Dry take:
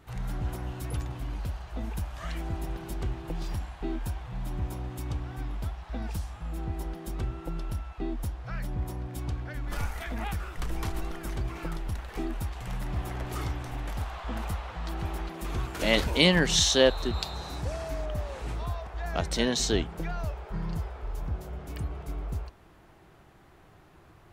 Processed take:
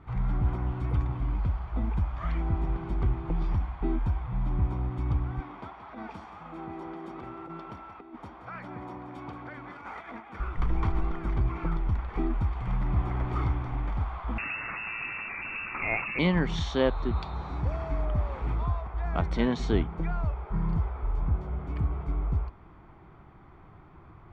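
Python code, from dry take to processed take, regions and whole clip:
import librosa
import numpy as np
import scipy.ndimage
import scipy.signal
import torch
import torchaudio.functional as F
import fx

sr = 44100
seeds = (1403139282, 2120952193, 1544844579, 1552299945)

y = fx.chain(x, sr, fx.highpass(hz=330.0, slope=12),
    fx.over_compress(threshold_db=-42.0, ratio=-0.5),
    fx.echo_single(ms=177, db=-11.0), at=(5.4, 10.4))
y = fx.chain(y, sr, fx.freq_invert(carrier_hz=2700),
    fx.env_flatten(amount_pct=50), at=(14.38, 16.19))
y = fx.rider(y, sr, range_db=3, speed_s=2.0)
y = scipy.signal.sosfilt(scipy.signal.butter(2, 1800.0, 'lowpass', fs=sr, output='sos'), y)
y = y + 0.4 * np.pad(y, (int(0.9 * sr / 1000.0), 0))[:len(y)]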